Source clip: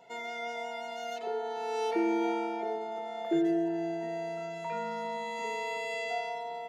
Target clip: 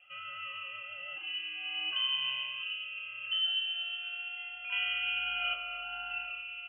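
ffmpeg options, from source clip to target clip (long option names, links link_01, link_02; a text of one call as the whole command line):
ffmpeg -i in.wav -filter_complex "[0:a]asettb=1/sr,asplit=3[link_01][link_02][link_03];[link_01]atrim=end=4.724[link_04];[link_02]atrim=start=4.72:end=5.54,asetpts=PTS-STARTPTS,afade=type=in:duration=0.004:curve=qsin,afade=type=out:start_time=0.816:duration=0.004:curve=qsin,acontrast=76[link_05];[link_03]atrim=start=5.536[link_06];[link_04][link_05]acrossfade=duration=0.004:curve1=hsin:curve2=qsin[link_07];[link_07][link_06]acrossfade=duration=0.004:curve1=qsin:curve2=hsin,flanger=delay=6.7:depth=9.3:regen=69:speed=1.2:shape=triangular,lowpass=frequency=2900:width_type=q:width=0.5098,lowpass=frequency=2900:width_type=q:width=0.6013,lowpass=frequency=2900:width_type=q:width=0.9,lowpass=frequency=2900:width_type=q:width=2.563,afreqshift=-3400" out.wav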